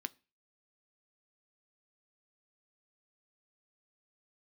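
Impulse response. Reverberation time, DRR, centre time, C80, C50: 0.30 s, 13.0 dB, 2 ms, 31.5 dB, 26.5 dB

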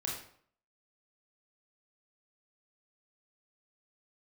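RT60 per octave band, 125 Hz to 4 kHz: 0.60 s, 0.60 s, 0.60 s, 0.60 s, 0.50 s, 0.45 s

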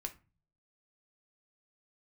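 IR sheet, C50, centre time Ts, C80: 15.5 dB, 6 ms, 22.5 dB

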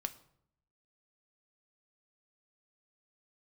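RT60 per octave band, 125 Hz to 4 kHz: 1.0 s, 0.85 s, 0.75 s, 0.65 s, 0.55 s, 0.45 s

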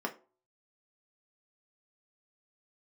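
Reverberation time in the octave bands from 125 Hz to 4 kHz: 0.25 s, 0.40 s, 0.40 s, 0.35 s, 0.25 s, 0.20 s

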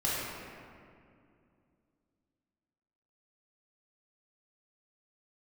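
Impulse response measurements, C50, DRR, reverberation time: -3.0 dB, -8.0 dB, 2.4 s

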